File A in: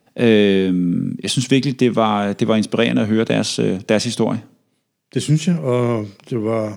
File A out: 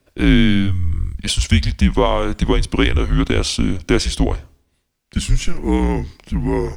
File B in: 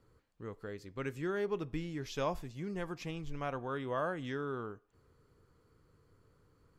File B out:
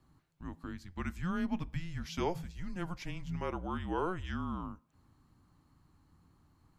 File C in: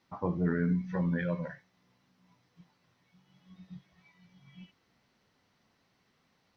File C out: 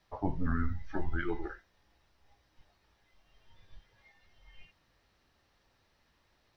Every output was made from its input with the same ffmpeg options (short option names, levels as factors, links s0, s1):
-af "afreqshift=-180,volume=1.12"